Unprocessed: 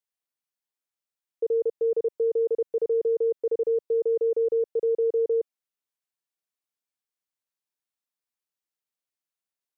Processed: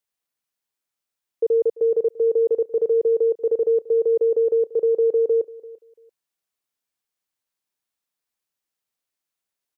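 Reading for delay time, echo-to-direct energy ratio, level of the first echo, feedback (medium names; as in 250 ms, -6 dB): 340 ms, -20.0 dB, -20.0 dB, 19%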